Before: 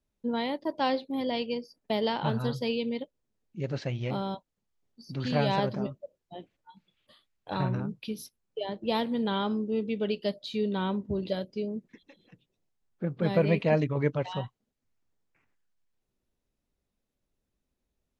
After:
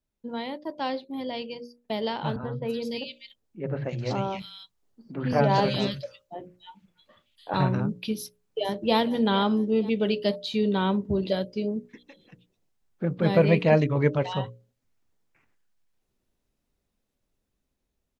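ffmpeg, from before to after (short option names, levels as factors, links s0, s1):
-filter_complex "[0:a]asettb=1/sr,asplit=3[s0][s1][s2];[s0]atrim=end=2.364[s3];[s1]atrim=start=2.36:end=7.54,asetpts=PTS-STARTPTS,afade=t=in:d=0.004:c=qsin,afade=t=out:st=5.176:d=0.004:c=qsin,acrossover=split=180|2200[s4][s5][s6];[s4]adelay=70[s7];[s6]adelay=290[s8];[s7][s5][s8]amix=inputs=3:normalize=0,atrim=end_sample=228438[s9];[s2]atrim=start=7.536[s10];[s3][s9]acrossfade=d=0.004:c1=hsin:c2=qsin[s11];[s11][s10]acrossfade=d=0.004:c1=qsin:c2=hsin,asplit=2[s12][s13];[s13]afade=t=in:st=8.18:d=0.01,afade=t=out:st=8.97:d=0.01,aecho=0:1:460|920|1380|1840:0.177828|0.0711312|0.0284525|0.011381[s14];[s12][s14]amix=inputs=2:normalize=0,bandreject=f=60:t=h:w=6,bandreject=f=120:t=h:w=6,bandreject=f=180:t=h:w=6,bandreject=f=240:t=h:w=6,bandreject=f=300:t=h:w=6,bandreject=f=360:t=h:w=6,bandreject=f=420:t=h:w=6,bandreject=f=480:t=h:w=6,bandreject=f=540:t=h:w=6,bandreject=f=600:t=h:w=6,dynaudnorm=f=730:g=9:m=2.82,volume=0.75"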